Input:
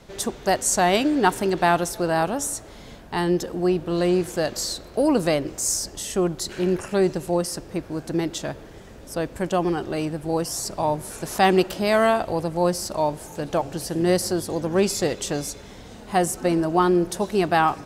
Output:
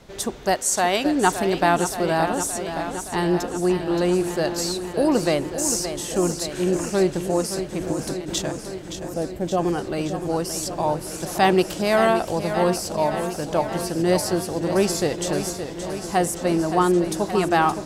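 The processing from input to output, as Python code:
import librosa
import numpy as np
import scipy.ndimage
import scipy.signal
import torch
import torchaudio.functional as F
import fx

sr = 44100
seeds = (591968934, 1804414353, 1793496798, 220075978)

y = fx.low_shelf(x, sr, hz=260.0, db=-10.5, at=(0.54, 1.06))
y = fx.over_compress(y, sr, threshold_db=-30.0, ratio=-0.5, at=(7.8, 8.41), fade=0.02)
y = fx.spec_box(y, sr, start_s=8.89, length_s=0.68, low_hz=840.0, high_hz=12000.0, gain_db=-11)
y = fx.echo_warbled(y, sr, ms=571, feedback_pct=72, rate_hz=2.8, cents=63, wet_db=-9.5)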